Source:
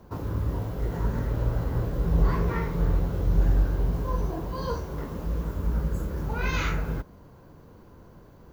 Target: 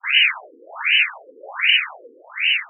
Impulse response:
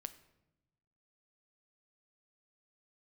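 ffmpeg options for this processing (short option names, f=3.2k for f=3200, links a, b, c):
-filter_complex "[0:a]equalizer=f=1.2k:w=1:g=5,acrossover=split=160|760[a][b][c];[b]dynaudnorm=f=140:g=3:m=16dB[d];[a][d][c]amix=inputs=3:normalize=0,flanger=delay=7.7:depth=3.4:regen=72:speed=1:shape=sinusoidal,aresample=11025,aeval=exprs='sgn(val(0))*max(abs(val(0))-0.00316,0)':c=same,aresample=44100,asetrate=139356,aresample=44100,volume=28dB,asoftclip=hard,volume=-28dB,asplit=2[e][f];[f]highpass=f=720:p=1,volume=18dB,asoftclip=type=tanh:threshold=-27.5dB[g];[e][g]amix=inputs=2:normalize=0,lowpass=f=1.1k:p=1,volume=-6dB,adynamicsmooth=sensitivity=3:basefreq=1k[h];[1:a]atrim=start_sample=2205[i];[h][i]afir=irnorm=-1:irlink=0,lowpass=f=3.2k:t=q:w=0.5098,lowpass=f=3.2k:t=q:w=0.6013,lowpass=f=3.2k:t=q:w=0.9,lowpass=f=3.2k:t=q:w=2.563,afreqshift=-3800,alimiter=level_in=33dB:limit=-1dB:release=50:level=0:latency=1,afftfilt=real='re*between(b*sr/1024,350*pow(2200/350,0.5+0.5*sin(2*PI*1.3*pts/sr))/1.41,350*pow(2200/350,0.5+0.5*sin(2*PI*1.3*pts/sr))*1.41)':imag='im*between(b*sr/1024,350*pow(2200/350,0.5+0.5*sin(2*PI*1.3*pts/sr))/1.41,350*pow(2200/350,0.5+0.5*sin(2*PI*1.3*pts/sr))*1.41)':win_size=1024:overlap=0.75"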